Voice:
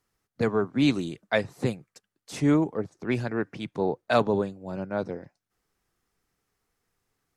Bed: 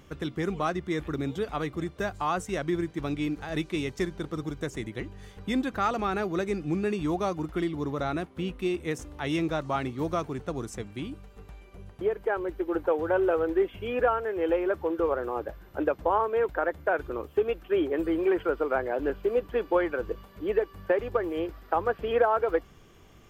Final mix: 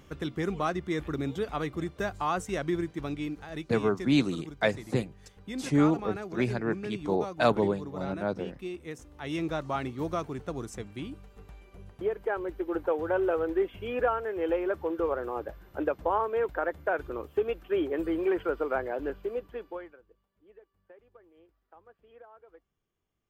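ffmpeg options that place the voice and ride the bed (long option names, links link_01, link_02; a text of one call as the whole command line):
ffmpeg -i stem1.wav -i stem2.wav -filter_complex "[0:a]adelay=3300,volume=-1.5dB[link_01];[1:a]volume=5.5dB,afade=type=out:start_time=2.7:duration=0.99:silence=0.398107,afade=type=in:start_time=9.11:duration=0.4:silence=0.473151,afade=type=out:start_time=18.77:duration=1.24:silence=0.0446684[link_02];[link_01][link_02]amix=inputs=2:normalize=0" out.wav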